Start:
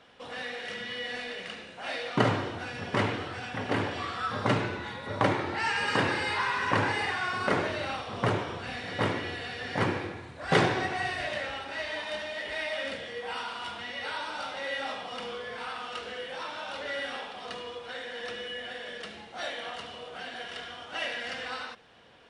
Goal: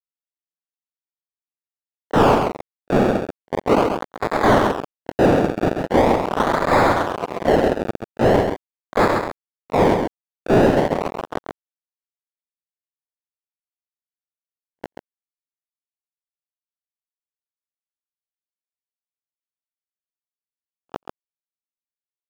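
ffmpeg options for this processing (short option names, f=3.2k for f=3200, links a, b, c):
-filter_complex "[0:a]lowpass=f=1.3k:w=0.5412,lowpass=f=1.3k:w=1.3066,bandreject=f=50:t=h:w=6,bandreject=f=100:t=h:w=6,bandreject=f=150:t=h:w=6,asplit=2[a][b];[b]acompressor=threshold=-39dB:ratio=10,volume=-1dB[c];[a][c]amix=inputs=2:normalize=0,aeval=exprs='val(0)+0.00631*(sin(2*PI*50*n/s)+sin(2*PI*2*50*n/s)/2+sin(2*PI*3*50*n/s)/3+sin(2*PI*4*50*n/s)/4+sin(2*PI*5*50*n/s)/5)':c=same,aresample=16000,acrusher=bits=3:mix=0:aa=0.000001,aresample=44100,asplit=4[d][e][f][g];[e]asetrate=33038,aresample=44100,atempo=1.33484,volume=-11dB[h];[f]asetrate=37084,aresample=44100,atempo=1.18921,volume=-8dB[i];[g]asetrate=88200,aresample=44100,atempo=0.5,volume=-16dB[j];[d][h][i][j]amix=inputs=4:normalize=0,acrusher=samples=29:mix=1:aa=0.000001:lfo=1:lforange=29:lforate=0.41,asplit=2[k][l];[l]highpass=f=720:p=1,volume=33dB,asoftclip=type=tanh:threshold=-9.5dB[m];[k][m]amix=inputs=2:normalize=0,lowpass=f=1k:p=1,volume=-6dB,aecho=1:1:134:0.501,volume=4.5dB"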